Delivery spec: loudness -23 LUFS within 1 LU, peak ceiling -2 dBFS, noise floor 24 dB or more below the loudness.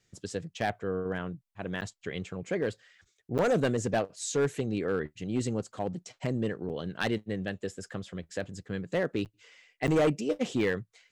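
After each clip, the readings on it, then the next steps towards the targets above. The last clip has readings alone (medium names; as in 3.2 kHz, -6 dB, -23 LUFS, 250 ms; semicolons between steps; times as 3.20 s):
clipped samples 0.8%; clipping level -20.5 dBFS; dropouts 5; longest dropout 8.7 ms; loudness -32.0 LUFS; peak level -20.5 dBFS; loudness target -23.0 LUFS
-> clip repair -20.5 dBFS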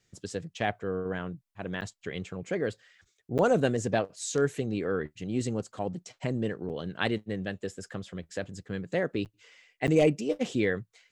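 clipped samples 0.0%; dropouts 5; longest dropout 8.7 ms
-> interpolate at 1.81/3.38/6.69/9.25/9.87 s, 8.7 ms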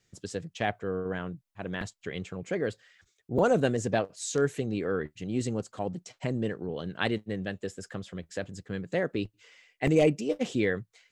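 dropouts 0; loudness -31.0 LUFS; peak level -11.5 dBFS; loudness target -23.0 LUFS
-> trim +8 dB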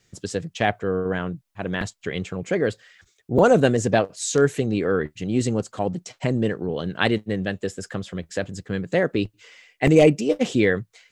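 loudness -23.0 LUFS; peak level -3.5 dBFS; noise floor -66 dBFS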